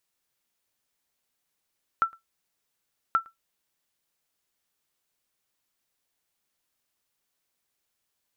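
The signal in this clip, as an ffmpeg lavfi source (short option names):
-f lavfi -i "aevalsrc='0.211*(sin(2*PI*1340*mod(t,1.13))*exp(-6.91*mod(t,1.13)/0.14)+0.0473*sin(2*PI*1340*max(mod(t,1.13)-0.11,0))*exp(-6.91*max(mod(t,1.13)-0.11,0)/0.14))':d=2.26:s=44100"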